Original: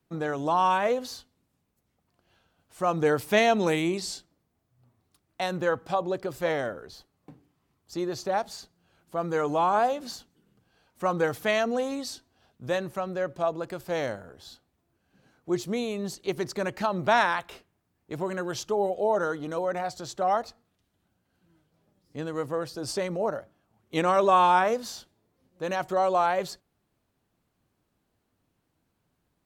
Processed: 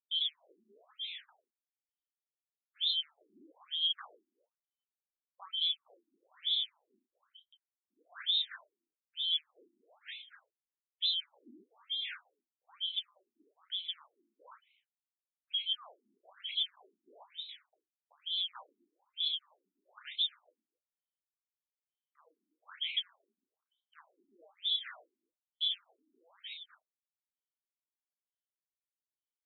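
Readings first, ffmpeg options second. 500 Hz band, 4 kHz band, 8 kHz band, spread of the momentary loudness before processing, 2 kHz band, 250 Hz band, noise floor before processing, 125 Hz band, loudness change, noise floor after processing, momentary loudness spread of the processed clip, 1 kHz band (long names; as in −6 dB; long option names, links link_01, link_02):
below −40 dB, +7.0 dB, below −35 dB, 16 LU, −19.0 dB, below −35 dB, −76 dBFS, below −40 dB, −7.5 dB, below −85 dBFS, 17 LU, −33.0 dB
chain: -filter_complex "[0:a]afftfilt=real='real(if(lt(b,272),68*(eq(floor(b/68),0)*2+eq(floor(b/68),1)*3+eq(floor(b/68),2)*0+eq(floor(b/68),3)*1)+mod(b,68),b),0)':imag='imag(if(lt(b,272),68*(eq(floor(b/68),0)*2+eq(floor(b/68),1)*3+eq(floor(b/68),2)*0+eq(floor(b/68),3)*1)+mod(b,68),b),0)':win_size=2048:overlap=0.75,agate=range=-34dB:threshold=-53dB:ratio=16:detection=peak,acompressor=threshold=-26dB:ratio=16,equalizer=frequency=350:width=0.42:gain=-4.5,asplit=2[link_01][link_02];[link_02]adelay=240,highpass=300,lowpass=3400,asoftclip=type=hard:threshold=-27dB,volume=-14dB[link_03];[link_01][link_03]amix=inputs=2:normalize=0,asoftclip=type=tanh:threshold=-22.5dB,acontrast=87,bass=frequency=250:gain=-2,treble=frequency=4000:gain=5,asplit=2[link_04][link_05];[link_05]adelay=32,volume=-7dB[link_06];[link_04][link_06]amix=inputs=2:normalize=0,afftfilt=real='re*between(b*sr/1024,260*pow(3000/260,0.5+0.5*sin(2*PI*1.1*pts/sr))/1.41,260*pow(3000/260,0.5+0.5*sin(2*PI*1.1*pts/sr))*1.41)':imag='im*between(b*sr/1024,260*pow(3000/260,0.5+0.5*sin(2*PI*1.1*pts/sr))/1.41,260*pow(3000/260,0.5+0.5*sin(2*PI*1.1*pts/sr))*1.41)':win_size=1024:overlap=0.75,volume=-8.5dB"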